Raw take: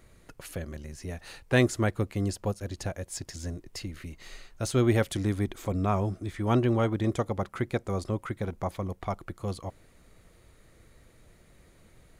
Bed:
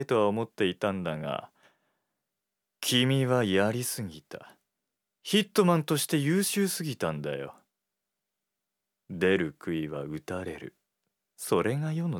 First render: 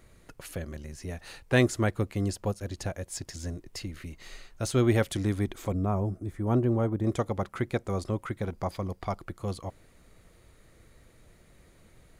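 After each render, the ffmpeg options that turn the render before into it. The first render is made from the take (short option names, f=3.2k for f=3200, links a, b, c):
-filter_complex "[0:a]asettb=1/sr,asplit=3[a][b][c];[a]atrim=end=5.734[d];[b]atrim=start=5.73:end=7.07,asetpts=PTS-STARTPTS,afade=t=in:d=0.004:c=qsin,afade=t=out:st=1.336:d=0.004:c=qsin,equalizer=f=3.4k:t=o:w=2.5:g=-15[e];[c]atrim=start=7.066[f];[d][e]acrossfade=d=0.004:c1=hsin:c2=qsin[g];[g][f]acrossfade=d=0.004:c1=qsin:c2=hsin,asettb=1/sr,asplit=3[h][i][j];[h]atrim=end=8.544[k];[i]atrim=start=8.54:end=9.23,asetpts=PTS-STARTPTS,afade=t=in:d=0.004:c=qsin,afade=t=out:st=0.686:d=0.004:c=qsin,equalizer=f=4.8k:w=8:g=12[l];[j]atrim=start=9.226[m];[k][l]acrossfade=d=0.004:c1=hsin:c2=qsin[n];[n][m]acrossfade=d=0.004:c1=qsin:c2=hsin"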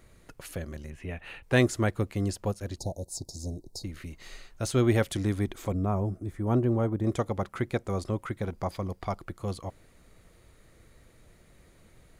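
-filter_complex "[0:a]asettb=1/sr,asplit=3[a][b][c];[a]atrim=end=0.904[d];[b]atrim=start=0.9:end=1.43,asetpts=PTS-STARTPTS,afade=t=in:d=0.004:c=qsin,afade=t=out:st=0.526:d=0.004:c=qsin,highshelf=f=3.7k:t=q:w=3:g=-10.5[e];[c]atrim=start=1.426[f];[d][e]acrossfade=d=0.004:c1=hsin:c2=qsin[g];[g][f]acrossfade=d=0.004:c1=qsin:c2=hsin,asettb=1/sr,asplit=3[h][i][j];[h]atrim=end=2.784[k];[i]atrim=start=2.78:end=3.84,asetpts=PTS-STARTPTS,afade=t=in:d=0.004:c=qsin,afade=t=out:st=1.056:d=0.004:c=qsin,asuperstop=centerf=1900:order=20:qfactor=0.66[l];[j]atrim=start=3.836[m];[k][l]acrossfade=d=0.004:c1=hsin:c2=qsin[n];[n][m]acrossfade=d=0.004:c1=qsin:c2=hsin"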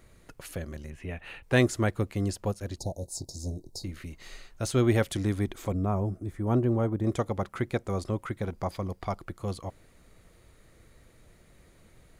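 -filter_complex "[0:a]asettb=1/sr,asplit=3[a][b][c];[a]atrim=end=3.004[d];[b]atrim=start=3:end=3.97,asetpts=PTS-STARTPTS,afade=t=in:d=0.004:c=qsin,afade=t=out:st=0.966:d=0.004:c=qsin,asplit=2[e][f];[f]adelay=22,volume=-11.5dB[g];[e][g]amix=inputs=2:normalize=0,atrim=end_sample=42777[h];[c]atrim=start=3.966[i];[d][h]acrossfade=d=0.004:c1=hsin:c2=qsin[j];[j][i]acrossfade=d=0.004:c1=qsin:c2=hsin"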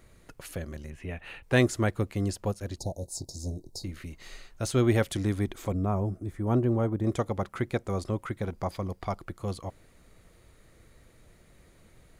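-af anull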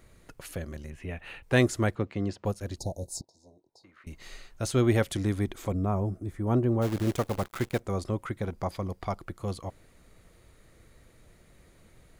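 -filter_complex "[0:a]asettb=1/sr,asplit=3[a][b][c];[a]atrim=end=1.954[d];[b]atrim=start=1.95:end=2.45,asetpts=PTS-STARTPTS,afade=t=in:d=0.004:c=qsin,afade=t=out:st=0.496:d=0.004:c=qsin,highpass=110,lowpass=3.7k[e];[c]atrim=start=2.446[f];[d][e]acrossfade=d=0.004:c1=hsin:c2=qsin[g];[g][f]acrossfade=d=0.004:c1=qsin:c2=hsin,asettb=1/sr,asplit=3[h][i][j];[h]atrim=end=3.214[k];[i]atrim=start=3.21:end=4.07,asetpts=PTS-STARTPTS,afade=t=in:d=0.004:c=qsin,afade=t=out:st=0.856:d=0.004:c=qsin,bandpass=f=1.2k:t=q:w=2.3[l];[j]atrim=start=4.066[m];[k][l]acrossfade=d=0.004:c1=hsin:c2=qsin[n];[n][m]acrossfade=d=0.004:c1=qsin:c2=hsin,asplit=3[o][p][q];[o]afade=t=out:st=6.81:d=0.02[r];[p]acrusher=bits=7:dc=4:mix=0:aa=0.000001,afade=t=in:st=6.81:d=0.02,afade=t=out:st=7.79:d=0.02[s];[q]afade=t=in:st=7.79:d=0.02[t];[r][s][t]amix=inputs=3:normalize=0"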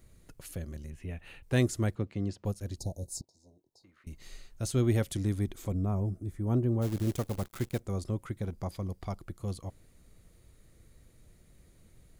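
-af "equalizer=f=1.2k:w=0.31:g=-9.5"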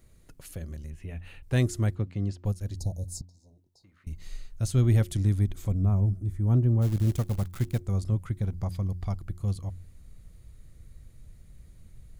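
-af "bandreject=f=89.15:t=h:w=4,bandreject=f=178.3:t=h:w=4,bandreject=f=267.45:t=h:w=4,bandreject=f=356.6:t=h:w=4,asubboost=boost=3:cutoff=180"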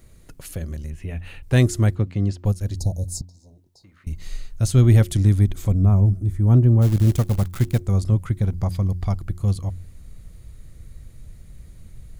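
-af "volume=8dB"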